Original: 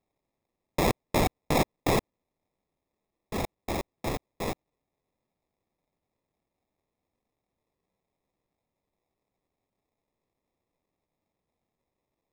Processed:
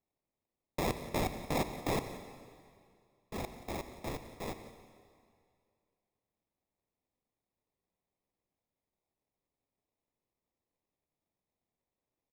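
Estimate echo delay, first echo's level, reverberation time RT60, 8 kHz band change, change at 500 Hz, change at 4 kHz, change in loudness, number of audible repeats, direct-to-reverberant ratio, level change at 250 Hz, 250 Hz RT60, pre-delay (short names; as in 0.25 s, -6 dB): 0.179 s, -17.0 dB, 2.2 s, -8.0 dB, -8.0 dB, -8.0 dB, -8.5 dB, 1, 9.0 dB, -7.5 dB, 2.2 s, 27 ms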